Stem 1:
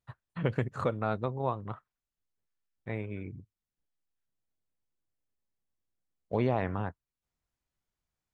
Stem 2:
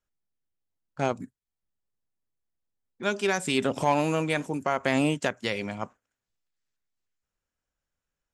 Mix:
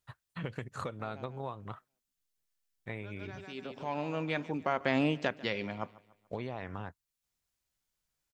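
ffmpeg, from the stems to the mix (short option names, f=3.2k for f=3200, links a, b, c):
-filter_complex "[0:a]highshelf=f=2.2k:g=12,acompressor=threshold=-31dB:ratio=6,volume=-3.5dB,asplit=2[a][b];[1:a]lowpass=f=4.9k:w=0.5412,lowpass=f=4.9k:w=1.3066,volume=-4.5dB,asplit=2[c][d];[d]volume=-20.5dB[e];[b]apad=whole_len=367374[f];[c][f]sidechaincompress=threshold=-59dB:ratio=4:attack=9.2:release=814[g];[e]aecho=0:1:145|290|435|580|725|870:1|0.42|0.176|0.0741|0.0311|0.0131[h];[a][g][h]amix=inputs=3:normalize=0"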